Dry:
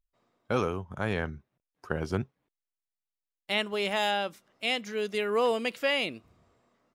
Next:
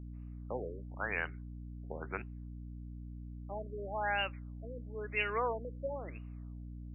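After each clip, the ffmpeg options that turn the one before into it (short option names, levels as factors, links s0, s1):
-af "aderivative,aeval=exprs='val(0)+0.00141*(sin(2*PI*60*n/s)+sin(2*PI*2*60*n/s)/2+sin(2*PI*3*60*n/s)/3+sin(2*PI*4*60*n/s)/4+sin(2*PI*5*60*n/s)/5)':c=same,afftfilt=real='re*lt(b*sr/1024,590*pow(3000/590,0.5+0.5*sin(2*PI*1*pts/sr)))':imag='im*lt(b*sr/1024,590*pow(3000/590,0.5+0.5*sin(2*PI*1*pts/sr)))':win_size=1024:overlap=0.75,volume=4.47"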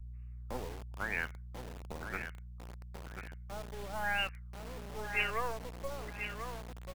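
-filter_complex "[0:a]aecho=1:1:1039|2078|3117:0.398|0.107|0.029,acrossover=split=130|1200[s0][s1][s2];[s1]acrusher=bits=5:dc=4:mix=0:aa=0.000001[s3];[s0][s3][s2]amix=inputs=3:normalize=0,volume=1.19"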